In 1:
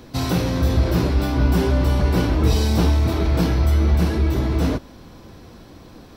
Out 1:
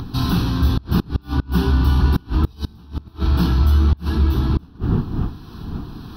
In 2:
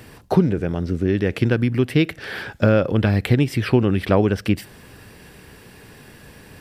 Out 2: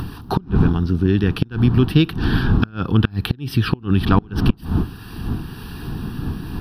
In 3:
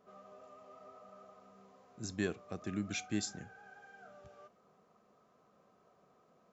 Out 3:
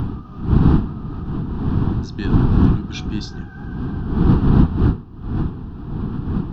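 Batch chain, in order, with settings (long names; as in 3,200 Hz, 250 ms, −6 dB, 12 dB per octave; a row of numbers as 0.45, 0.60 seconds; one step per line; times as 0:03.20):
wind on the microphone 240 Hz −26 dBFS
phaser with its sweep stopped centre 2,100 Hz, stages 6
in parallel at −0.5 dB: upward compression, threshold −24 dBFS
on the sum: harmonic generator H 2 −18 dB, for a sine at 6.5 dBFS
gate with flip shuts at −3 dBFS, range −29 dB
loudness normalisation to −20 LKFS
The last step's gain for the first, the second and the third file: −3.0, 0.0, +3.5 decibels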